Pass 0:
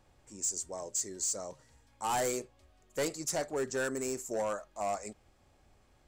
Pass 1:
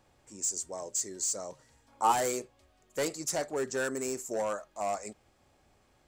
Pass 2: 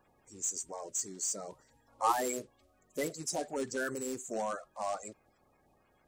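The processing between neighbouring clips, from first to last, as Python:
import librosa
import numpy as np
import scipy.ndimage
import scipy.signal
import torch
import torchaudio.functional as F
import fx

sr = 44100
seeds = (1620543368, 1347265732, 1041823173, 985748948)

y1 = fx.spec_box(x, sr, start_s=1.88, length_s=0.24, low_hz=220.0, high_hz=1500.0, gain_db=8)
y1 = fx.low_shelf(y1, sr, hz=78.0, db=-9.5)
y1 = y1 * 10.0 ** (1.5 / 20.0)
y2 = fx.spec_quant(y1, sr, step_db=30)
y2 = y2 * 10.0 ** (-2.5 / 20.0)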